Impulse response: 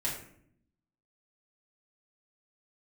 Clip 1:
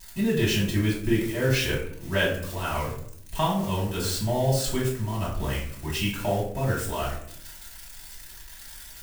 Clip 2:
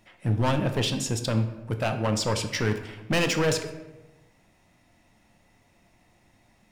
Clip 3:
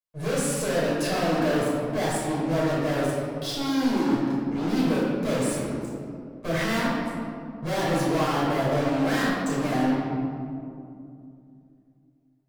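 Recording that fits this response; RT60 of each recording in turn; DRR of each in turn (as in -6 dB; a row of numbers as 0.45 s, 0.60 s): 1; 0.65 s, 1.1 s, 2.6 s; -6.5 dB, 6.0 dB, -9.0 dB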